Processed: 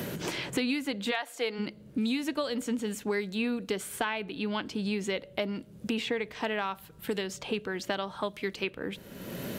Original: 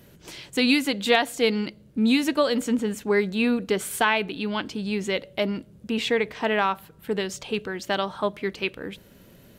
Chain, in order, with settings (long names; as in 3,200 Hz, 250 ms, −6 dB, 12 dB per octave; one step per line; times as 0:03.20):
0:01.10–0:01.58: high-pass filter 890 Hz → 380 Hz 12 dB per octave
multiband upward and downward compressor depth 100%
level −8 dB